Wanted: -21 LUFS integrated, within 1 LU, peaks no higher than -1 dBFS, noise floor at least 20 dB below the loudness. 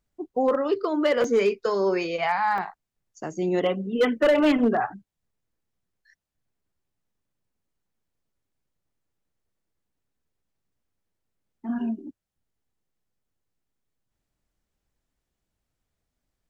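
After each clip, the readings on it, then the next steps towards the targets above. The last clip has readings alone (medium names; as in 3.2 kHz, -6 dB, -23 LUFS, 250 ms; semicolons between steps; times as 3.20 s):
clipped samples 0.3%; clipping level -14.5 dBFS; dropouts 2; longest dropout 2.8 ms; loudness -24.0 LUFS; peak level -14.5 dBFS; loudness target -21.0 LUFS
-> clip repair -14.5 dBFS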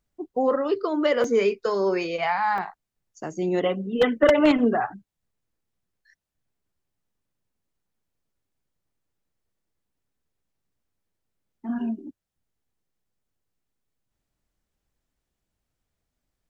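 clipped samples 0.0%; dropouts 2; longest dropout 2.8 ms
-> interpolate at 1.24/2.58 s, 2.8 ms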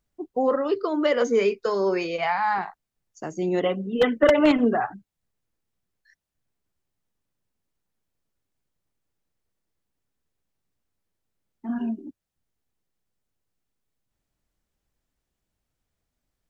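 dropouts 0; loudness -23.5 LUFS; peak level -5.5 dBFS; loudness target -21.0 LUFS
-> trim +2.5 dB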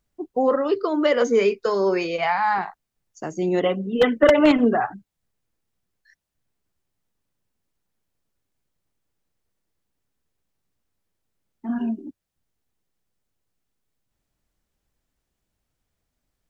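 loudness -21.0 LUFS; peak level -3.0 dBFS; noise floor -80 dBFS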